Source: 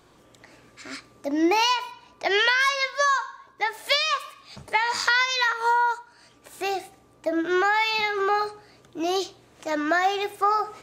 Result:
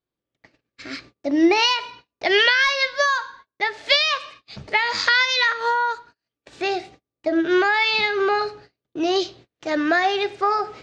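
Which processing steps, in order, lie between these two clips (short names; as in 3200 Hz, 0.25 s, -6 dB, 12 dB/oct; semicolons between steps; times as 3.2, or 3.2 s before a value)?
bell 1000 Hz -7 dB 1.1 oct; gate -49 dBFS, range -36 dB; LPF 5300 Hz 24 dB/oct; gain +6 dB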